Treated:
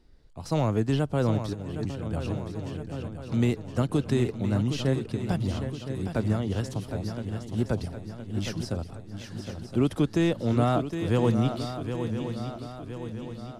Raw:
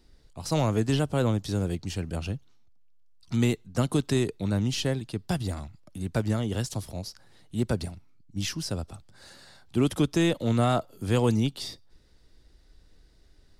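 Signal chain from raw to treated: on a send: shuffle delay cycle 1017 ms, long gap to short 3:1, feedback 51%, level -8.5 dB; 1.53–2.08 s: on the sum: compressor with a negative ratio -33 dBFS, ratio -1; treble shelf 3.2 kHz -9.5 dB

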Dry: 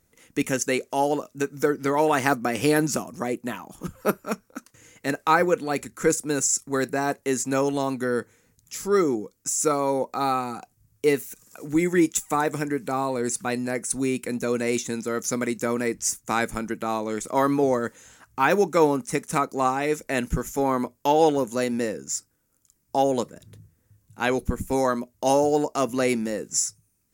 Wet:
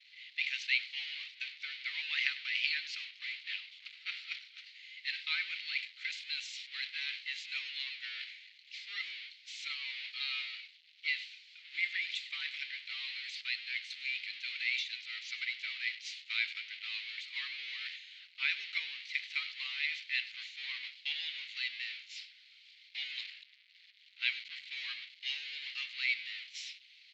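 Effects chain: jump at every zero crossing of -24.5 dBFS; delay 99 ms -17 dB; expander -22 dBFS; elliptic band-pass 2.1–4.3 kHz, stop band 60 dB

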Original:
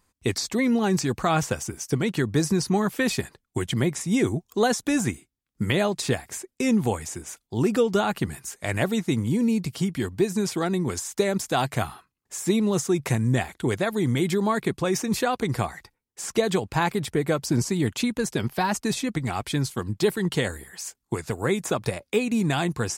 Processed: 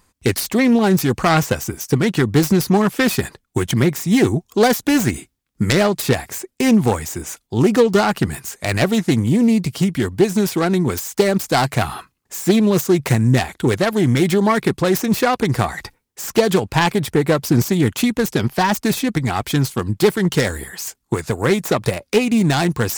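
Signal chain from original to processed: self-modulated delay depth 0.19 ms; reverse; upward compressor, threshold -31 dBFS; reverse; trim +8 dB

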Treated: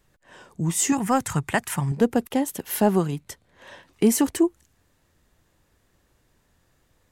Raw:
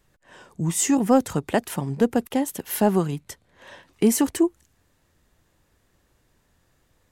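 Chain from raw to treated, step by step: 0.92–1.92 s: graphic EQ 125/250/500/1000/2000/4000/8000 Hz +8/-6/-8/+4/+6/-3/+6 dB

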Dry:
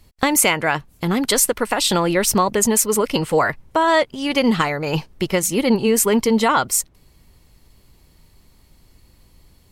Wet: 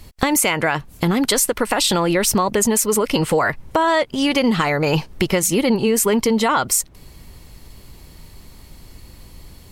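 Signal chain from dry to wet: in parallel at +1 dB: peak limiter -14 dBFS, peak gain reduction 11 dB; on the sum: compression 3:1, threshold -21 dBFS, peak gain reduction 10 dB; trim +4 dB

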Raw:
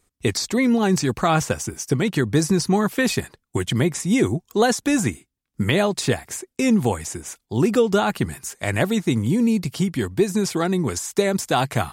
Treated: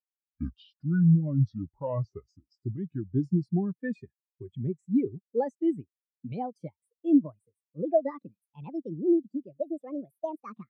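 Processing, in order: gliding tape speed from 59% -> 164%; spectral contrast expander 2.5:1; trim -6 dB

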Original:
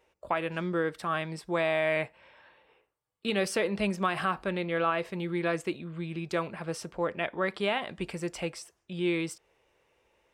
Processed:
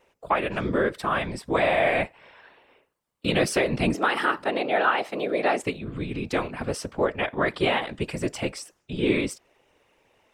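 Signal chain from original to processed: 3.94–5.63 s: frequency shift +160 Hz; whisper effect; trim +5.5 dB

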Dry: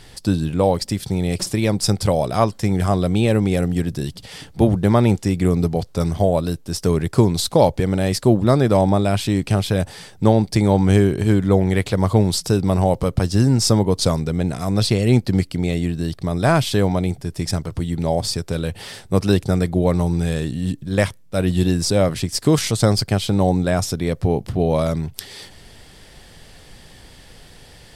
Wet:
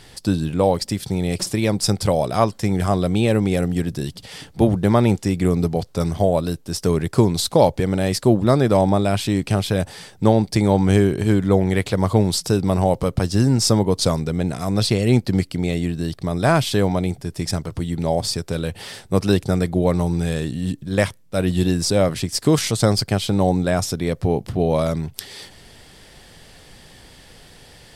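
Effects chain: bass shelf 86 Hz -5 dB

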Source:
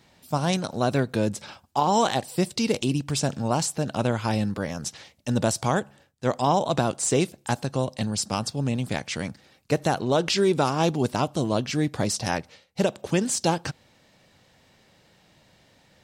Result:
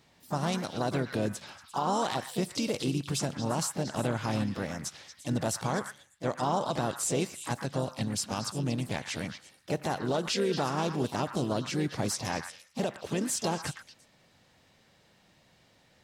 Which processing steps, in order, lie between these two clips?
harmony voices +3 st -10 dB, +5 st -12 dB; peak limiter -14 dBFS, peak gain reduction 5.5 dB; repeats whose band climbs or falls 116 ms, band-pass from 1.5 kHz, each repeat 1.4 oct, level -4.5 dB; trim -5.5 dB

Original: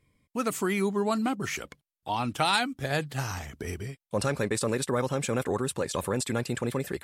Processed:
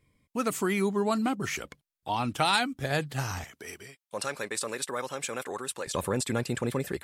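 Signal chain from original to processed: 3.44–5.87 s: high-pass 970 Hz 6 dB/octave

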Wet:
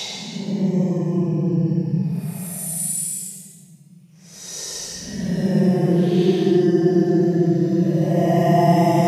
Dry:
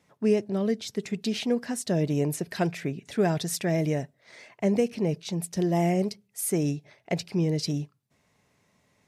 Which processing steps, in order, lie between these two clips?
Paulstretch 19×, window 0.05 s, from 5.29 s; trim +7.5 dB

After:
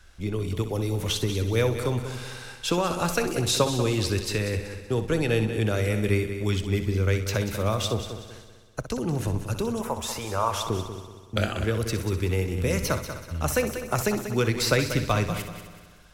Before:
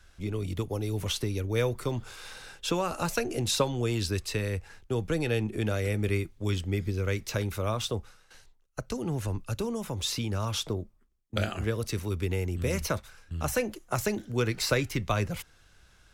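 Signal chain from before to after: 9.81–10.61 s: graphic EQ 125/250/500/1000/4000 Hz -10/-10/+5/+10/-10 dB; multi-head delay 63 ms, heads first and third, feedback 55%, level -11 dB; trim +3.5 dB

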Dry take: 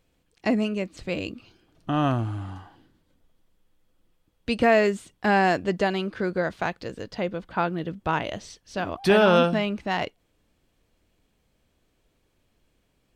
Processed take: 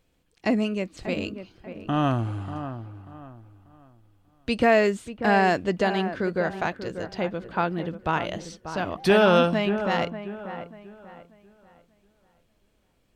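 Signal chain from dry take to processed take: feedback echo behind a low-pass 589 ms, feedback 31%, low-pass 1.9 kHz, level -10.5 dB

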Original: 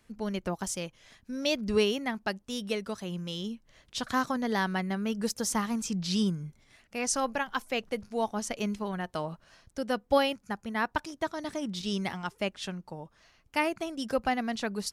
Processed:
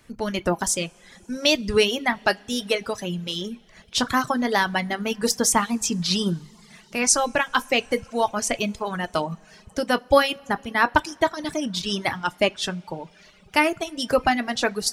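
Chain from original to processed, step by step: harmonic-percussive split percussive +5 dB; two-slope reverb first 0.28 s, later 3.6 s, from -18 dB, DRR 8 dB; reverb removal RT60 1 s; trim +6.5 dB

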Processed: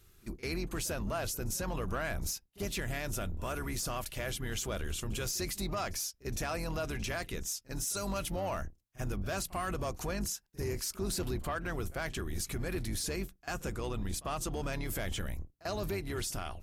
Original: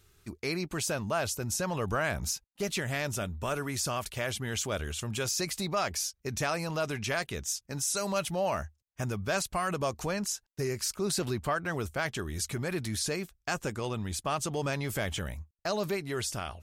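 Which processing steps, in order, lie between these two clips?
octave divider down 2 oct, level +1 dB; peaking EQ 12 kHz +7 dB 0.33 oct; in parallel at +2 dB: peak limiter -26.5 dBFS, peak gain reduction 9.5 dB; on the sum: saturation -18 dBFS, distortion -20 dB; reverse echo 45 ms -20.5 dB; on a send at -14 dB: reverberation RT60 0.20 s, pre-delay 3 ms; on the sum: trim -8.5 dB

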